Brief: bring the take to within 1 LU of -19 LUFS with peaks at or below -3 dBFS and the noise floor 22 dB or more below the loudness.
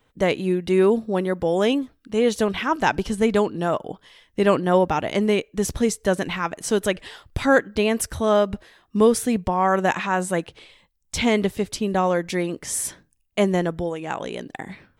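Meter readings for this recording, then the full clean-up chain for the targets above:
loudness -22.5 LUFS; peak -3.5 dBFS; loudness target -19.0 LUFS
-> gain +3.5 dB; limiter -3 dBFS

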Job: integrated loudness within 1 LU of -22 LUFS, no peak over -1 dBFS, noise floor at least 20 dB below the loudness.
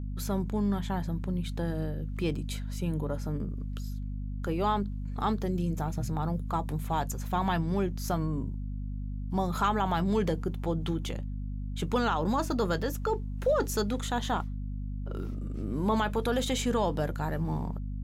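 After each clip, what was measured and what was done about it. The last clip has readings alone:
hum 50 Hz; harmonics up to 250 Hz; hum level -32 dBFS; loudness -31.5 LUFS; peak -16.5 dBFS; loudness target -22.0 LUFS
-> notches 50/100/150/200/250 Hz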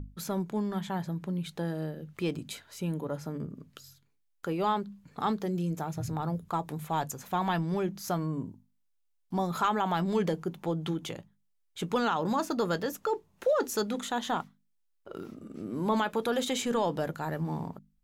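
hum none; loudness -32.0 LUFS; peak -16.5 dBFS; loudness target -22.0 LUFS
-> gain +10 dB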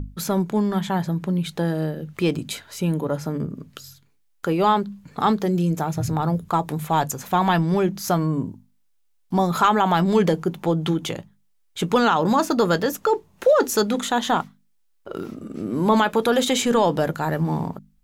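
loudness -22.0 LUFS; peak -6.5 dBFS; noise floor -63 dBFS

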